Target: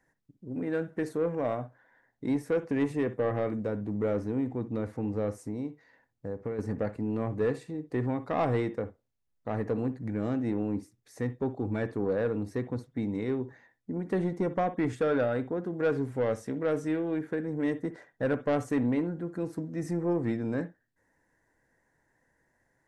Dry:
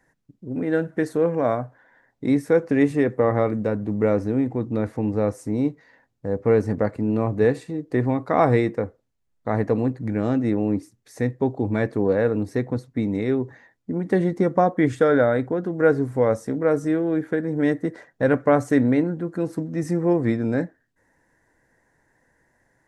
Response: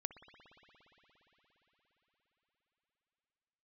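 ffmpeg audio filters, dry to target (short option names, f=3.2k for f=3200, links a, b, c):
-filter_complex "[0:a]asettb=1/sr,asplit=3[a][b][c];[a]atrim=end=5.454[d];[b]atrim=start=5.45:end=6.59,asetpts=PTS-STARTPTS,afade=t=in:d=0.004:c=qsin,afade=t=out:st=1.136:d=0.004:c=qsin,acompressor=threshold=-23dB:ratio=12[e];[c]atrim=start=6.586[f];[d][e]acrossfade=d=0.004:c1=hsin:c2=qsin[g];[g][f]acrossfade=d=0.004:c1=qsin:c2=hsin,asettb=1/sr,asplit=3[h][i][j];[h]atrim=end=15.924[k];[i]atrim=start=15.92:end=17.19,asetpts=PTS-STARTPTS,afade=t=in:d=0.004:c=qsin,afade=t=out:st=1.266:d=0.004:c=qsin,equalizer=f=2.8k:w=1.2:g=7.5[l];[j]atrim=start=17.186[m];[k][l]acrossfade=d=0.004:c1=hsin:c2=qsin[n];[n][m]acrossfade=d=0.004:c1=qsin:c2=hsin,asoftclip=type=tanh:threshold=-12.5dB[o];[1:a]atrim=start_sample=2205,atrim=end_sample=4410[p];[o][p]afir=irnorm=-1:irlink=0,volume=-4dB"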